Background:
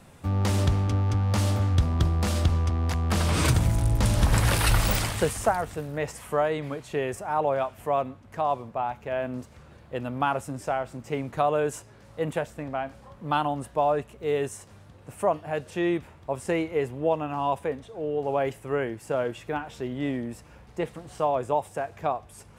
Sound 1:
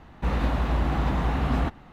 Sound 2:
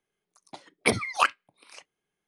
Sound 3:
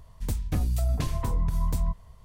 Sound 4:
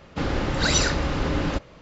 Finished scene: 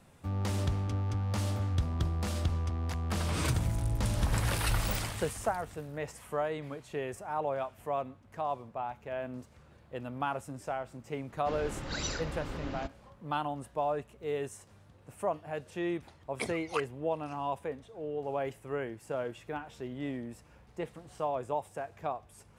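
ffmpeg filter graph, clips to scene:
ffmpeg -i bed.wav -i cue0.wav -i cue1.wav -i cue2.wav -i cue3.wav -filter_complex "[0:a]volume=-8dB[link_01];[4:a]atrim=end=1.81,asetpts=PTS-STARTPTS,volume=-14.5dB,afade=type=in:duration=0.004:curve=hsin,afade=type=out:start_time=1.806:duration=0.004:curve=hsin,adelay=11290[link_02];[2:a]atrim=end=2.27,asetpts=PTS-STARTPTS,volume=-13.5dB,afade=type=in:duration=0.004:curve=hsin,afade=type=out:start_time=2.266:duration=0.004:curve=hsin,adelay=15540[link_03];[link_01][link_02][link_03]amix=inputs=3:normalize=0" out.wav

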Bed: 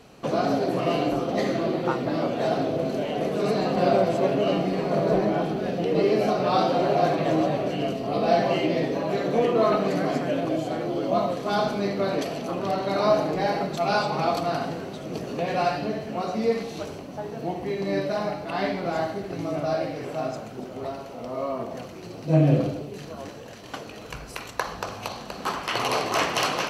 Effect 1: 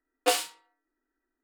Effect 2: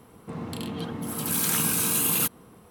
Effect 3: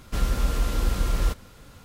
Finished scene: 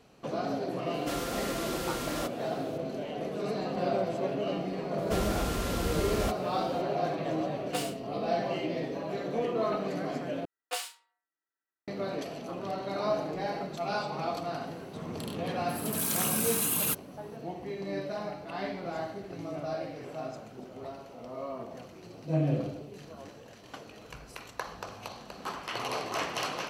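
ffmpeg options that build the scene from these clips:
ffmpeg -i bed.wav -i cue0.wav -i cue1.wav -i cue2.wav -filter_complex "[3:a]asplit=2[link_01][link_02];[1:a]asplit=2[link_03][link_04];[0:a]volume=-9dB[link_05];[link_01]highpass=frequency=770:poles=1[link_06];[link_02]highpass=87[link_07];[link_04]highpass=690[link_08];[link_05]asplit=2[link_09][link_10];[link_09]atrim=end=10.454[link_11];[link_08]atrim=end=1.43,asetpts=PTS-STARTPTS,volume=-8.5dB[link_12];[link_10]atrim=start=11.876[link_13];[link_06]atrim=end=1.84,asetpts=PTS-STARTPTS,volume=-1dB,afade=type=in:duration=0.004:curve=hsin,afade=type=out:start_time=1.836:duration=0.004:curve=hsin,adelay=940[link_14];[link_07]atrim=end=1.84,asetpts=PTS-STARTPTS,volume=-1dB,afade=type=in:duration=0.004:curve=hsin,afade=type=out:start_time=1.836:duration=0.004:curve=hsin,adelay=4980[link_15];[link_03]atrim=end=1.43,asetpts=PTS-STARTPTS,volume=-10dB,afade=type=in:duration=0.004:curve=hsin,afade=type=out:start_time=1.426:duration=0.004:curve=hsin,adelay=7470[link_16];[2:a]atrim=end=2.7,asetpts=PTS-STARTPTS,volume=-5dB,afade=type=in:duration=0.004:curve=hsin,afade=type=out:start_time=2.696:duration=0.004:curve=hsin,adelay=14670[link_17];[link_11][link_12]acrossfade=duration=0.004:curve1=hsin:curve2=hsin[link_18];[link_18][link_13]acrossfade=duration=0.004:curve1=hsin:curve2=hsin[link_19];[link_19][link_14][link_15][link_16][link_17]amix=inputs=5:normalize=0" out.wav

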